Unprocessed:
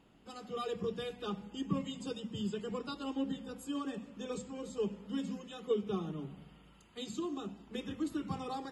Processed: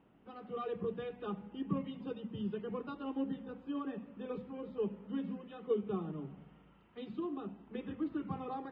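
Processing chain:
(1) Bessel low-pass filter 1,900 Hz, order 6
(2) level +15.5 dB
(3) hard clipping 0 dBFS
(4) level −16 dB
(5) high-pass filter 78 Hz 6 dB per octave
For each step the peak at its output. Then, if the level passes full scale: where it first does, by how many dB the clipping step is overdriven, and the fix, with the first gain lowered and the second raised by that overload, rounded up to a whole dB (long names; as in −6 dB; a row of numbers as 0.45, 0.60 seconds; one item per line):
−20.5, −5.0, −5.0, −21.0, −21.5 dBFS
no step passes full scale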